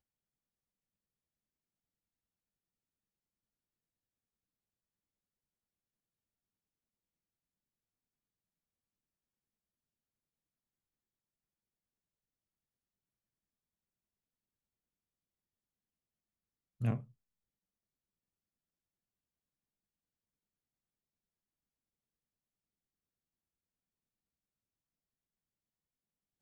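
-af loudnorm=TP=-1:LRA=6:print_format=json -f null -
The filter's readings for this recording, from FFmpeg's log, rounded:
"input_i" : "-37.8",
"input_tp" : "-23.0",
"input_lra" : "0.0",
"input_thresh" : "-48.6",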